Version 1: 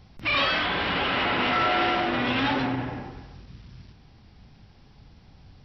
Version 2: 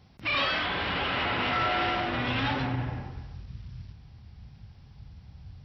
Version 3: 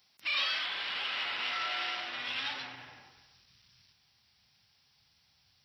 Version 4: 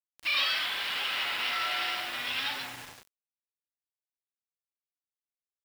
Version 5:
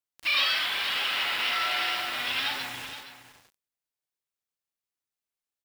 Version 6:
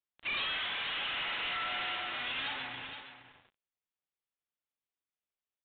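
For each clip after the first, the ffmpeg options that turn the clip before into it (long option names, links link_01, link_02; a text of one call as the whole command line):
ffmpeg -i in.wav -af "highpass=67,asubboost=boost=6.5:cutoff=120,volume=-3.5dB" out.wav
ffmpeg -i in.wav -af "aderivative,aeval=exprs='0.0422*(cos(1*acos(clip(val(0)/0.0422,-1,1)))-cos(1*PI/2))+0.000299*(cos(5*acos(clip(val(0)/0.0422,-1,1)))-cos(5*PI/2))+0.000473*(cos(7*acos(clip(val(0)/0.0422,-1,1)))-cos(7*PI/2))':channel_layout=same,volume=5.5dB" out.wav
ffmpeg -i in.wav -af "acrusher=bits=7:mix=0:aa=0.000001,volume=3.5dB" out.wav
ffmpeg -i in.wav -af "aecho=1:1:470:0.251,volume=3dB" out.wav
ffmpeg -i in.wav -af "aresample=8000,asoftclip=type=tanh:threshold=-28dB,aresample=44100,volume=-3.5dB" -ar 48000 -c:a wmav2 -b:a 128k out.wma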